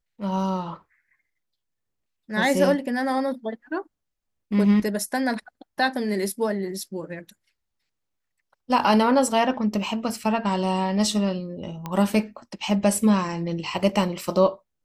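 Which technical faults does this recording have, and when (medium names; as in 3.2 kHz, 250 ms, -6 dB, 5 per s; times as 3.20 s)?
11.86 s: pop -17 dBFS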